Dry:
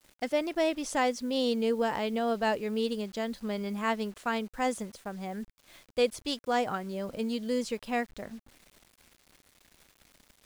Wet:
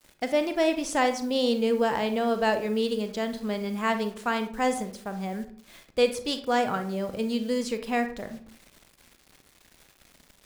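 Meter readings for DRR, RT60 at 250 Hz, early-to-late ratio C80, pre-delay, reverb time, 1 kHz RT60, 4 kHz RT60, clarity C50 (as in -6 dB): 8.0 dB, 0.60 s, 15.0 dB, 32 ms, 0.50 s, 0.50 s, 0.30 s, 11.0 dB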